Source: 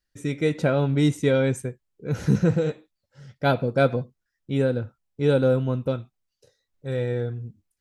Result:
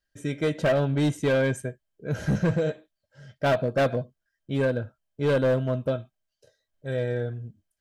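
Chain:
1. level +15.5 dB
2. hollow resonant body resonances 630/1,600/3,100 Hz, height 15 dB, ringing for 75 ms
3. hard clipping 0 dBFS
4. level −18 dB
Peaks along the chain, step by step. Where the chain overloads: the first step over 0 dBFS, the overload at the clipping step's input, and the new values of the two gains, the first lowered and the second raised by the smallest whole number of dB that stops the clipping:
+7.0, +10.0, 0.0, −18.0 dBFS
step 1, 10.0 dB
step 1 +5.5 dB, step 4 −8 dB

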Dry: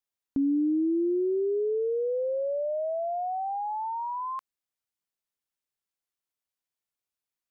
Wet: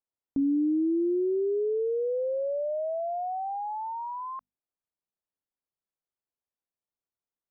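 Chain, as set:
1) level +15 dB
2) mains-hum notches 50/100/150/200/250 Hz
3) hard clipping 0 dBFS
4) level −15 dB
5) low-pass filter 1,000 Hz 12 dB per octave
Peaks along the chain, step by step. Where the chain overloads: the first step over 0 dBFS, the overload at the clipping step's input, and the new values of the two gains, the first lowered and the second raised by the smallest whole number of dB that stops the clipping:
−6.0, −5.5, −5.5, −20.5, −20.5 dBFS
no step passes full scale

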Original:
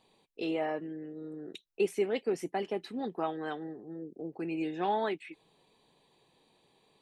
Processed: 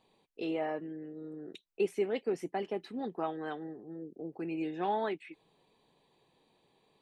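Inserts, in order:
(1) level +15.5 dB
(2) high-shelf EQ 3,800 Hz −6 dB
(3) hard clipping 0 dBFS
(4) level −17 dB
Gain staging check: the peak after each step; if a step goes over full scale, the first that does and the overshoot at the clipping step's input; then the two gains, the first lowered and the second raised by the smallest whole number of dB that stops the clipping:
−2.5, −3.0, −3.0, −20.0 dBFS
no step passes full scale

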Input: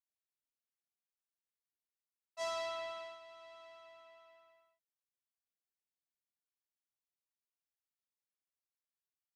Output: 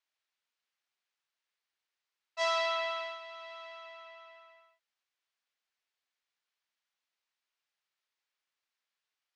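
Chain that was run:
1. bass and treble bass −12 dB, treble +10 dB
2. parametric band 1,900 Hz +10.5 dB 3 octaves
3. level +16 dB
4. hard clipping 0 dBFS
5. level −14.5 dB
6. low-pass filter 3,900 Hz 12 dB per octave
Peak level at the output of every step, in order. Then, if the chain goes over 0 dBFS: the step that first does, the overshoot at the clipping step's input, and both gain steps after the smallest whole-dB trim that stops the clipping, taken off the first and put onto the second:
−25.0, −18.0, −2.0, −2.0, −16.5, −18.5 dBFS
no step passes full scale

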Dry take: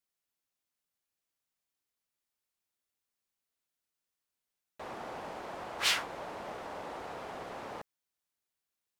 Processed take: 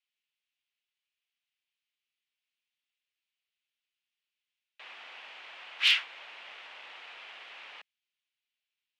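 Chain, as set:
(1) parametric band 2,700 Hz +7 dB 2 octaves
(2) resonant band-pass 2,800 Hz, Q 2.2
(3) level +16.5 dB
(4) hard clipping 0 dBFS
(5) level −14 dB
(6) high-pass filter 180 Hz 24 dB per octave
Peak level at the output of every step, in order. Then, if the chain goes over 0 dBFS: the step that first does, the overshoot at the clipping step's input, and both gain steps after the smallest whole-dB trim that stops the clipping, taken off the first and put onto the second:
−9.5, −12.5, +4.0, 0.0, −14.0, −13.0 dBFS
step 3, 4.0 dB
step 3 +12.5 dB, step 5 −10 dB

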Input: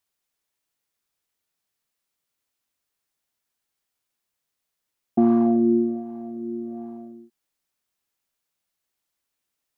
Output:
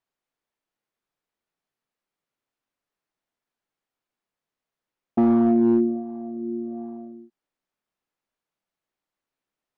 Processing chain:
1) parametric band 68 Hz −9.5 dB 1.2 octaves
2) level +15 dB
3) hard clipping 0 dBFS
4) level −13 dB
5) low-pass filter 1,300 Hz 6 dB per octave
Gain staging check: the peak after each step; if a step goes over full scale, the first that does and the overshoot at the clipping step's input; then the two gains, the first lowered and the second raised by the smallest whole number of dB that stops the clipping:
−9.0, +6.0, 0.0, −13.0, −13.0 dBFS
step 2, 6.0 dB
step 2 +9 dB, step 4 −7 dB

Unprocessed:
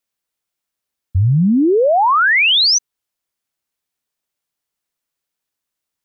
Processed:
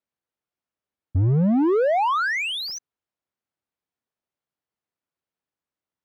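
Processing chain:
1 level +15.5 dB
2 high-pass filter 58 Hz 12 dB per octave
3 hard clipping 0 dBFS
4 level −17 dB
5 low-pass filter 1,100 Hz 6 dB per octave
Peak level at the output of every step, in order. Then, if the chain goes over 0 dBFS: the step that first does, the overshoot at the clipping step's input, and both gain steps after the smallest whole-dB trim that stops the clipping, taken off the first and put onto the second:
+6.0, +6.0, 0.0, −17.0, −17.0 dBFS
step 1, 6.0 dB
step 1 +9.5 dB, step 4 −11 dB

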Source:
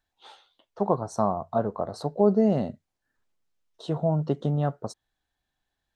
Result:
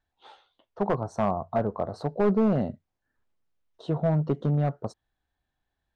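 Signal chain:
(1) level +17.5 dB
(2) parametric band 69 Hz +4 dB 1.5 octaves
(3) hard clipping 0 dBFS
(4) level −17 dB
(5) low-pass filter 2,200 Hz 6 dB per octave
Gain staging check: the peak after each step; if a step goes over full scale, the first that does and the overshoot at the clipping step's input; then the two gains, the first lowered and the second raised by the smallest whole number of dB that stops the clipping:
+9.0, +9.5, 0.0, −17.0, −17.0 dBFS
step 1, 9.5 dB
step 1 +7.5 dB, step 4 −7 dB

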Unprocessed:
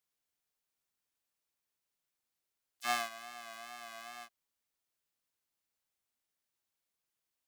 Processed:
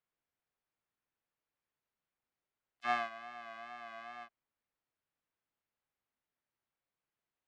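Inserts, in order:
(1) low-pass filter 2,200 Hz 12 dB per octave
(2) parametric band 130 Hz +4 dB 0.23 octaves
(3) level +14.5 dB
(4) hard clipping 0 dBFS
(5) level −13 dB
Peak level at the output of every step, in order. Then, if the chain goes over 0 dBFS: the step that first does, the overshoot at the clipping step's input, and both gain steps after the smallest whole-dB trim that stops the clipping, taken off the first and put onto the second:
−19.5, −19.5, −5.0, −5.0, −18.0 dBFS
no step passes full scale

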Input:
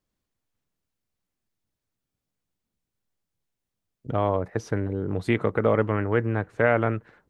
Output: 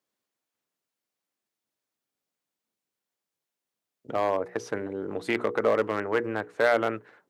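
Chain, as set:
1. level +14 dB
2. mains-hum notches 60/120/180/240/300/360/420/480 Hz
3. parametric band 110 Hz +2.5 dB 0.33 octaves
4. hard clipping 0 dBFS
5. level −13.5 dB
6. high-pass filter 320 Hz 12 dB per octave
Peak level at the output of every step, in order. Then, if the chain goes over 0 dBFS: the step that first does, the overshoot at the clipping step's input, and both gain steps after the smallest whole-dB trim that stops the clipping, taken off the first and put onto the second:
+6.5, +5.5, +6.0, 0.0, −13.5, −9.0 dBFS
step 1, 6.0 dB
step 1 +8 dB, step 5 −7.5 dB

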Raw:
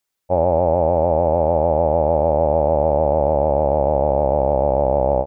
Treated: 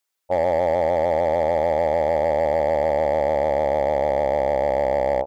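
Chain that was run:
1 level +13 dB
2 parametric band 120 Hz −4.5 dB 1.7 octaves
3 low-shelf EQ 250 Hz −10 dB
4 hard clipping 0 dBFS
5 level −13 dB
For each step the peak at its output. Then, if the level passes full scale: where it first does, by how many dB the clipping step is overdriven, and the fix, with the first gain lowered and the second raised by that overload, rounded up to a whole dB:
+7.5, +6.0, +4.5, 0.0, −13.0 dBFS
step 1, 4.5 dB
step 1 +8 dB, step 5 −8 dB

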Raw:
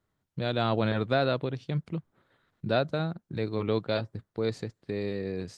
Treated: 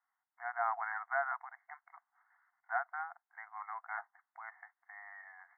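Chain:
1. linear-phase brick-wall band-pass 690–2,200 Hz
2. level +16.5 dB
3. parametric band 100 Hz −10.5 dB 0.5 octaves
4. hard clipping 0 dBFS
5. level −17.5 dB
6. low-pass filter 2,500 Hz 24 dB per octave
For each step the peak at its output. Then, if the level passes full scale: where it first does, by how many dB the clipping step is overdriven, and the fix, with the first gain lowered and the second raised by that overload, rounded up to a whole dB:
−20.0, −3.5, −3.5, −3.5, −21.0, −21.0 dBFS
no step passes full scale

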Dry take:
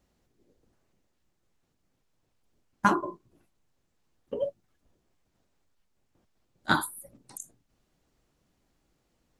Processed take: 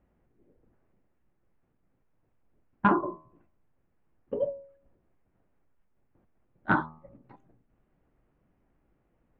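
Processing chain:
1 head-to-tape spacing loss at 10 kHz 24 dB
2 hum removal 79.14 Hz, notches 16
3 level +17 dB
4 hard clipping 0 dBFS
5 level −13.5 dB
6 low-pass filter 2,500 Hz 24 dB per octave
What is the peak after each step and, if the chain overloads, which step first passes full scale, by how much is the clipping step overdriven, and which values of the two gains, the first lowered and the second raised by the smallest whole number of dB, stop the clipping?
−9.0, −9.5, +7.5, 0.0, −13.5, −12.0 dBFS
step 3, 7.5 dB
step 3 +9 dB, step 5 −5.5 dB

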